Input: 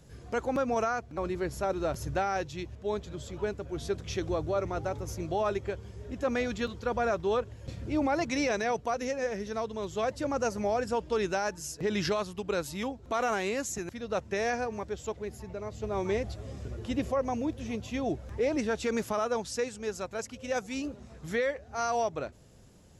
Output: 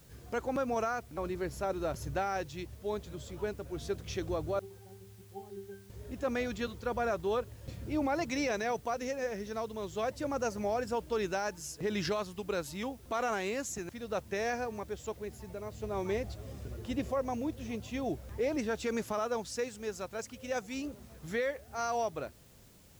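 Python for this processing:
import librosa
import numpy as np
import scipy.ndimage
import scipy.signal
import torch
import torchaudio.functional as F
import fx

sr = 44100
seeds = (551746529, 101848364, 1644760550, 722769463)

y = fx.octave_resonator(x, sr, note='G', decay_s=0.33, at=(4.59, 5.9))
y = fx.quant_dither(y, sr, seeds[0], bits=10, dither='triangular')
y = y * 10.0 ** (-3.5 / 20.0)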